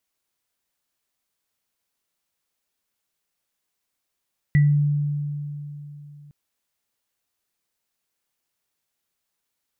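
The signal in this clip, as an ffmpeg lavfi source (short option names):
-f lavfi -i "aevalsrc='0.251*pow(10,-3*t/3.33)*sin(2*PI*146*t)+0.0631*pow(10,-3*t/0.27)*sin(2*PI*1960*t)':d=1.76:s=44100"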